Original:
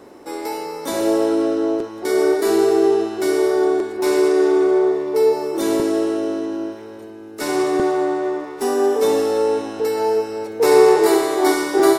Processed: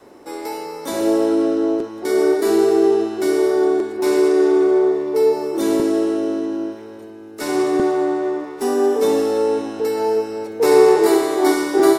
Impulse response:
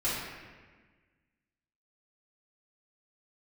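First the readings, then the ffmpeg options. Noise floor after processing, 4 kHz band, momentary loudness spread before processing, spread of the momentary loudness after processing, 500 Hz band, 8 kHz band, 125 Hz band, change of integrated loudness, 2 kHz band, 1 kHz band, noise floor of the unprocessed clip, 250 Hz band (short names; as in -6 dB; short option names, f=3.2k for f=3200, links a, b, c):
-37 dBFS, -1.5 dB, 12 LU, 12 LU, +0.5 dB, -1.5 dB, 0.0 dB, +0.5 dB, -1.5 dB, -1.0 dB, -36 dBFS, +1.5 dB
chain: -af "adynamicequalizer=threshold=0.0398:dfrequency=250:dqfactor=1.3:tfrequency=250:tqfactor=1.3:attack=5:release=100:ratio=0.375:range=2.5:mode=boostabove:tftype=bell,volume=-1.5dB"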